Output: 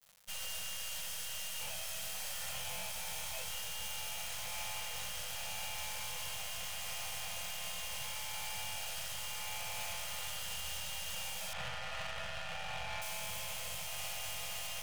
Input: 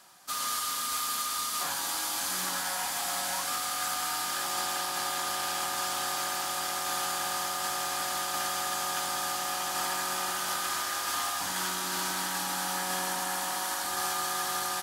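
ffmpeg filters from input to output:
-filter_complex "[0:a]flanger=delay=19.5:depth=2.7:speed=0.14,aeval=exprs='val(0)*sin(2*PI*1600*n/s)':c=same,highpass=45,acrusher=bits=6:dc=4:mix=0:aa=0.000001,asettb=1/sr,asplit=3[a][b][c];[a]atrim=end=11.534[d];[b]atrim=start=11.53:end=13.02,asetpts=PTS-STARTPTS,afade=t=in:d=0.004:c=qsin,afade=t=out:st=1.486:d=0.004:c=qsin,lowpass=2.9k[e];[c]atrim=start=13.016[f];[d][e]acrossfade=d=0.004:c1=hsin:c2=qsin[g];[g][f]acrossfade=d=0.004:c1=qsin:c2=hsin,asoftclip=type=hard:threshold=-38dB,afftfilt=real='re*(1-between(b*sr/4096,200,470))':imag='im*(1-between(b*sr/4096,200,470))':win_size=4096:overlap=0.75,volume=4dB"

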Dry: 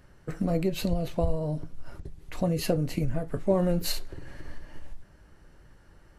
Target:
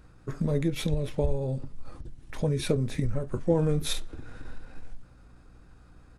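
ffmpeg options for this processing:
-af "asetrate=38170,aresample=44100,atempo=1.15535,aeval=exprs='val(0)+0.00158*(sin(2*PI*60*n/s)+sin(2*PI*2*60*n/s)/2+sin(2*PI*3*60*n/s)/3+sin(2*PI*4*60*n/s)/4+sin(2*PI*5*60*n/s)/5)':c=same"

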